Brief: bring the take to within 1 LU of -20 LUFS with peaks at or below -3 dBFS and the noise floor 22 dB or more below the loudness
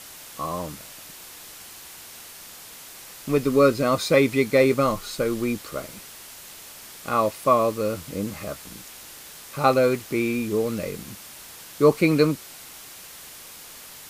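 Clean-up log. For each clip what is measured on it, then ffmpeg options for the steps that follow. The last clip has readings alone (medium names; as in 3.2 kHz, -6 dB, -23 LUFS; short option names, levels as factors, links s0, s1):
noise floor -43 dBFS; noise floor target -45 dBFS; loudness -23.0 LUFS; peak level -4.5 dBFS; loudness target -20.0 LUFS
-> -af "afftdn=nr=6:nf=-43"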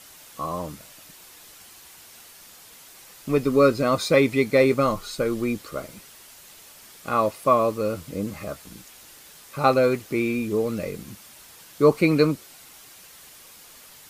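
noise floor -48 dBFS; loudness -22.5 LUFS; peak level -4.0 dBFS; loudness target -20.0 LUFS
-> -af "volume=1.33,alimiter=limit=0.708:level=0:latency=1"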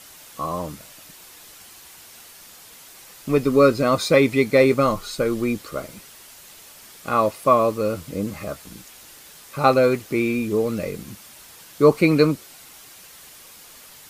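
loudness -20.0 LUFS; peak level -3.0 dBFS; noise floor -46 dBFS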